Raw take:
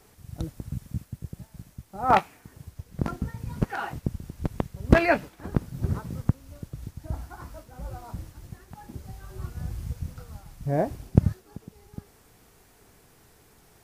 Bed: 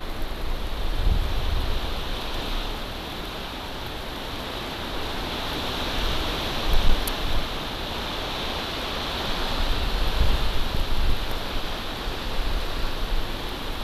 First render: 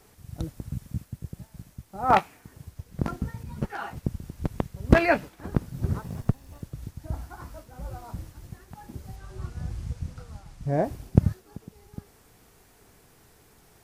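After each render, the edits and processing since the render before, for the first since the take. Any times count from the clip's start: 3.43–3.97 s: three-phase chorus; 6.02–6.62 s: comb filter that takes the minimum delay 1.1 ms; 9.16–10.84 s: low-pass 8.8 kHz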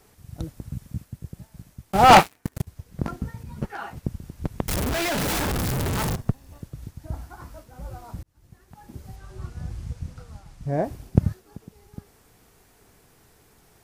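1.92–2.67 s: waveshaping leveller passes 5; 4.68–6.16 s: one-bit comparator; 8.23–9.00 s: fade in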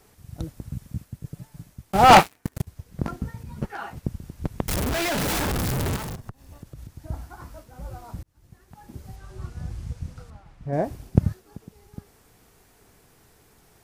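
1.24–1.66 s: comb 6.9 ms; 5.96–6.98 s: compression 4:1, threshold -35 dBFS; 10.30–10.73 s: tone controls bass -4 dB, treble -13 dB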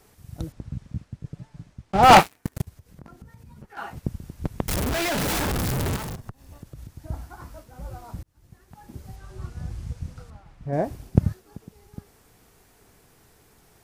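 0.52–2.03 s: distance through air 94 m; 2.69–3.77 s: compression 3:1, threshold -46 dBFS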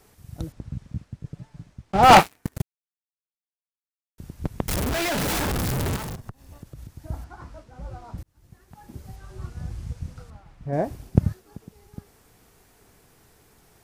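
2.62–4.18 s: mute; 7.24–8.18 s: distance through air 70 m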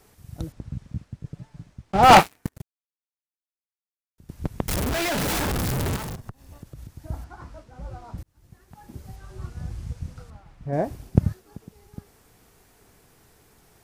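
2.49–4.29 s: gain -11.5 dB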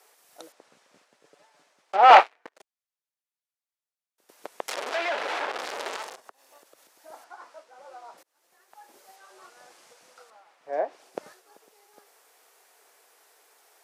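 high-pass 490 Hz 24 dB/octave; low-pass that closes with the level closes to 2.8 kHz, closed at -23.5 dBFS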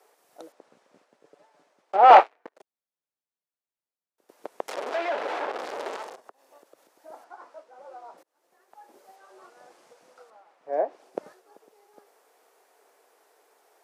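high-pass 320 Hz 6 dB/octave; tilt shelf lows +8 dB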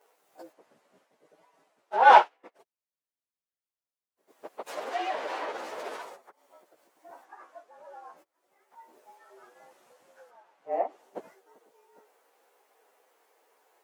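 frequency axis rescaled in octaves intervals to 108%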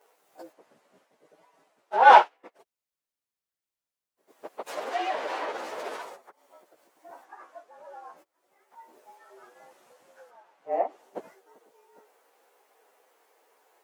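trim +2 dB; peak limiter -2 dBFS, peak gain reduction 1 dB

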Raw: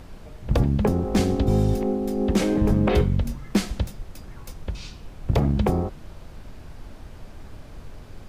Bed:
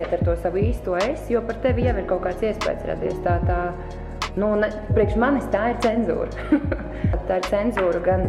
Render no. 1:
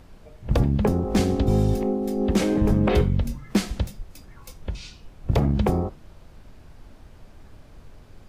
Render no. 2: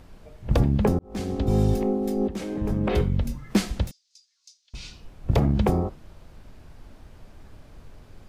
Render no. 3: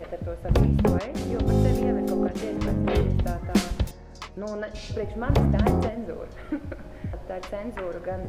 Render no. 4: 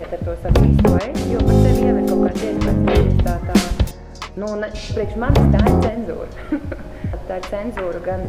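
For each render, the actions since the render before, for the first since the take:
noise print and reduce 6 dB
0.99–1.63 s: fade in; 2.28–3.40 s: fade in, from -14 dB; 3.91–4.74 s: Butterworth band-pass 5.3 kHz, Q 2
add bed -12 dB
trim +8.5 dB; peak limiter -3 dBFS, peak gain reduction 2.5 dB

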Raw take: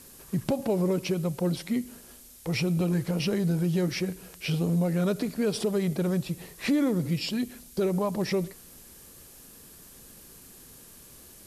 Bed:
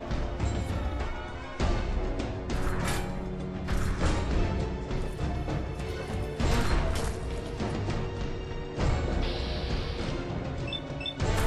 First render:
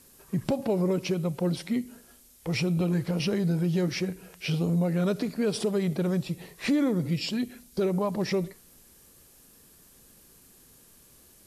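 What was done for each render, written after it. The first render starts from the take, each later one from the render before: noise print and reduce 6 dB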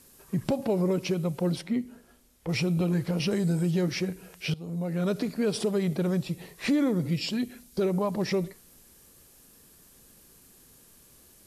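1.61–2.49 s: treble shelf 3.7 kHz -11 dB; 3.31–3.71 s: peaking EQ 8 kHz +14.5 dB 0.3 oct; 4.54–5.16 s: fade in, from -19.5 dB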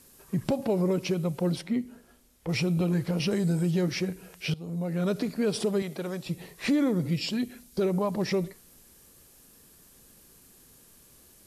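5.82–6.26 s: high-pass 530 Hz 6 dB/octave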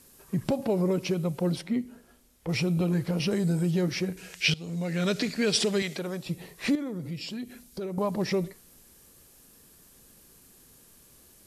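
4.17–5.99 s: high-order bell 3.6 kHz +10.5 dB 2.6 oct; 6.75–7.98 s: compression 2:1, threshold -38 dBFS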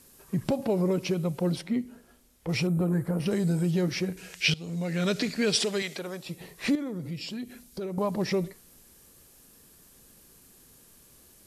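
2.67–3.26 s: high-order bell 3.8 kHz -14 dB; 5.55–6.41 s: bass shelf 230 Hz -9.5 dB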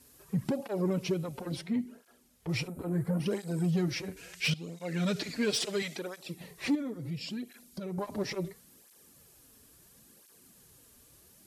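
saturation -20 dBFS, distortion -19 dB; cancelling through-zero flanger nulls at 0.73 Hz, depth 6.3 ms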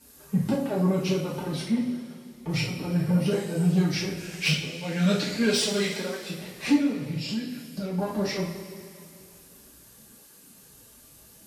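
two-slope reverb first 0.44 s, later 2.7 s, from -15 dB, DRR -6 dB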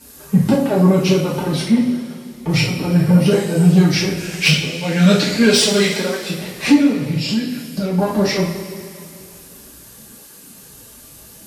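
trim +11 dB; peak limiter -2 dBFS, peak gain reduction 2.5 dB

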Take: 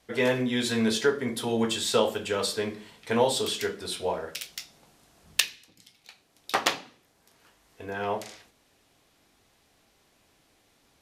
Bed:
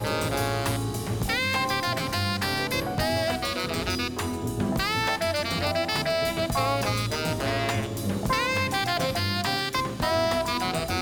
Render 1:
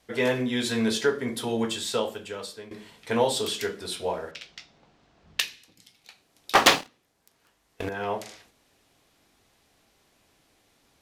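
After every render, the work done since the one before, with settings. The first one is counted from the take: 1.44–2.71 s: fade out, to -15.5 dB; 4.31–5.40 s: distance through air 160 m; 6.55–7.89 s: waveshaping leveller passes 3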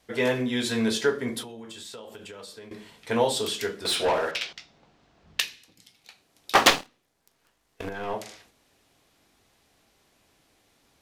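1.42–2.71 s: compression 10:1, threshold -38 dBFS; 3.85–4.53 s: overdrive pedal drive 21 dB, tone 5.5 kHz, clips at -15.5 dBFS; 6.70–8.14 s: partial rectifier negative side -7 dB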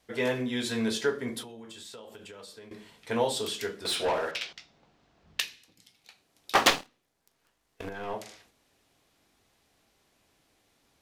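trim -4 dB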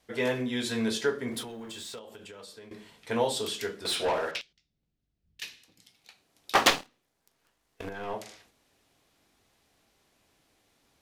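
1.31–1.99 s: companding laws mixed up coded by mu; 4.41–5.42 s: amplifier tone stack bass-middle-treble 10-0-1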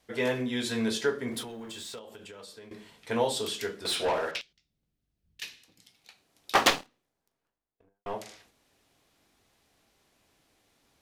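6.52–8.06 s: studio fade out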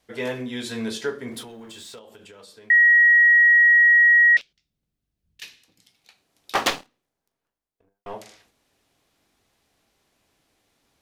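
2.70–4.37 s: bleep 1.9 kHz -11 dBFS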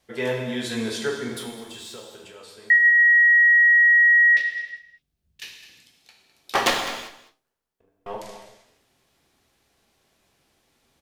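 delay 207 ms -15 dB; gated-style reverb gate 420 ms falling, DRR 2 dB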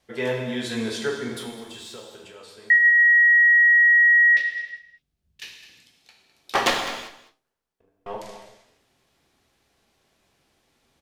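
treble shelf 9.3 kHz -5.5 dB

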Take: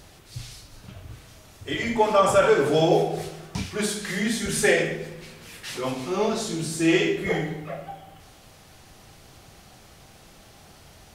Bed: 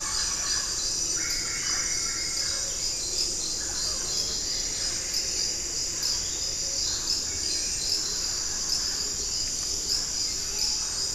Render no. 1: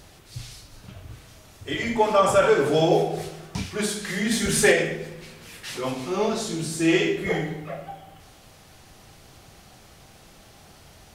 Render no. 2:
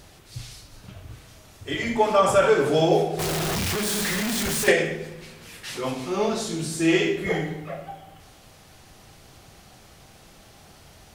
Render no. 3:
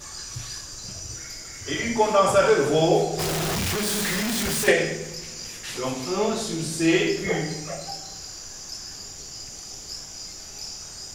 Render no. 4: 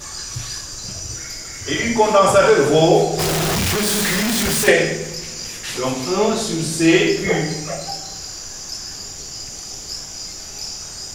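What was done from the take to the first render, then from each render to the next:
4.31–4.72 s: waveshaping leveller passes 1
3.19–4.68 s: one-bit comparator
add bed -9.5 dB
trim +6.5 dB; peak limiter -3 dBFS, peak gain reduction 2.5 dB

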